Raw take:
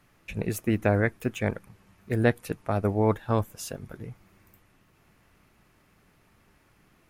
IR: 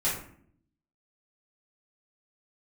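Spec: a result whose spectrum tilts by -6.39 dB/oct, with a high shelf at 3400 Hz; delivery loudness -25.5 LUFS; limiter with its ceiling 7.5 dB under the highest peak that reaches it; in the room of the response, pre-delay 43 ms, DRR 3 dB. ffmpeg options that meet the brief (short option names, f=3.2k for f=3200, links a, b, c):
-filter_complex "[0:a]highshelf=f=3.4k:g=-3.5,alimiter=limit=-16dB:level=0:latency=1,asplit=2[a][b];[1:a]atrim=start_sample=2205,adelay=43[c];[b][c]afir=irnorm=-1:irlink=0,volume=-12dB[d];[a][d]amix=inputs=2:normalize=0,volume=3dB"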